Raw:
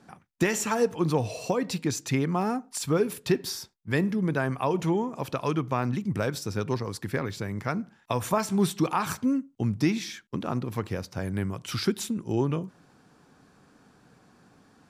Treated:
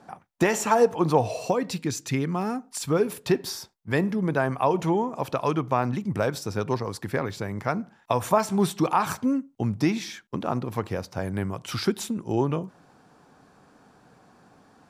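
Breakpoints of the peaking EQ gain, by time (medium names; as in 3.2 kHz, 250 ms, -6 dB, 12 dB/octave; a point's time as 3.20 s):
peaking EQ 750 Hz 1.4 oct
1.25 s +10 dB
1.84 s -2 dB
2.56 s -2 dB
3.15 s +6.5 dB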